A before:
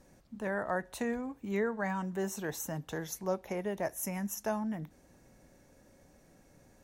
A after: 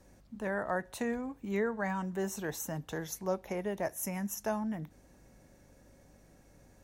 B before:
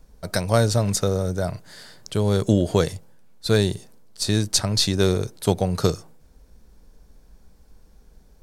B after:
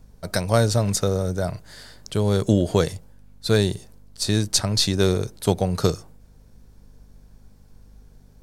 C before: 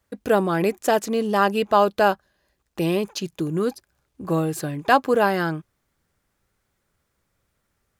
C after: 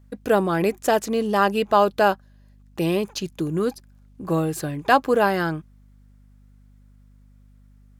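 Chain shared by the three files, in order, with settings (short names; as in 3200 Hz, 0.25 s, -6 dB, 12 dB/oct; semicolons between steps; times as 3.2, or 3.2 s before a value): hum 50 Hz, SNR 28 dB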